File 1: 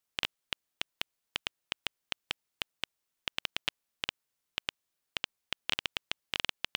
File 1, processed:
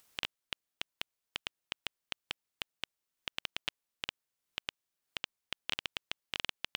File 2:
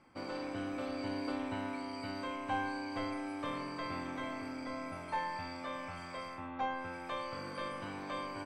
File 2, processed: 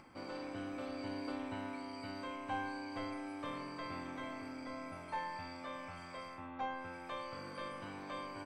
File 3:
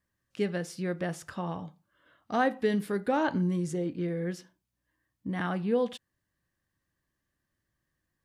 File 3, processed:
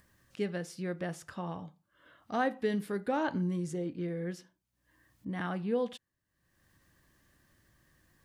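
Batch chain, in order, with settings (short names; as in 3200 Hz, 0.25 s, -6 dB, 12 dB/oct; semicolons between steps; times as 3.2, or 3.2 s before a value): upward compressor, threshold -47 dBFS; gain -4 dB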